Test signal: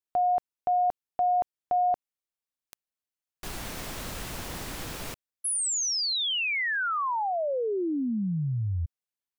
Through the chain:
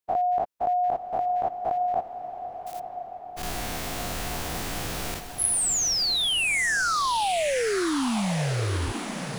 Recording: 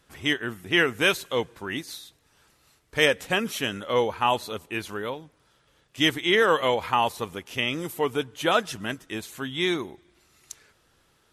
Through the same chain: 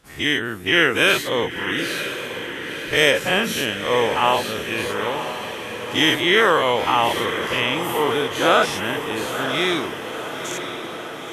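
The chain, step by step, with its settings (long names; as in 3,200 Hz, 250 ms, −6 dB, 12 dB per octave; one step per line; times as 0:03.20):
every bin's largest magnitude spread in time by 120 ms
feedback delay with all-pass diffusion 986 ms, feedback 64%, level −9 dB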